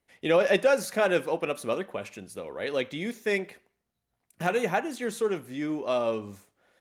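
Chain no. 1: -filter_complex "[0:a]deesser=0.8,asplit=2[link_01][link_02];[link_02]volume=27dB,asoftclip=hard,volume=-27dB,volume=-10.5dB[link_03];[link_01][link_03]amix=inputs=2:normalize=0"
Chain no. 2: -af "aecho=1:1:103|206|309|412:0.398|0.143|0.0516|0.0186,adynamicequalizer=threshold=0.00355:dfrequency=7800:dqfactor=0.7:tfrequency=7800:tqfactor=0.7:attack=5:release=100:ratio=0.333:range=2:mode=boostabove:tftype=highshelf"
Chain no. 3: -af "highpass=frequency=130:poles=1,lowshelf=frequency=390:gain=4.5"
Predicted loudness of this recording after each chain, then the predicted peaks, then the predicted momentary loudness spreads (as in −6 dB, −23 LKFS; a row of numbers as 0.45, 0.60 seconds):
−27.0, −27.5, −27.0 LKFS; −11.5, −9.5, −11.0 dBFS; 13, 15, 14 LU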